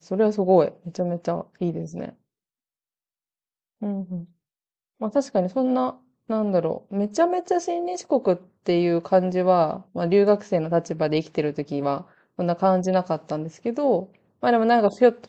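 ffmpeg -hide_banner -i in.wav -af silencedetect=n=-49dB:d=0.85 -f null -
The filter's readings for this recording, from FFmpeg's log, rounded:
silence_start: 2.13
silence_end: 3.81 | silence_duration: 1.68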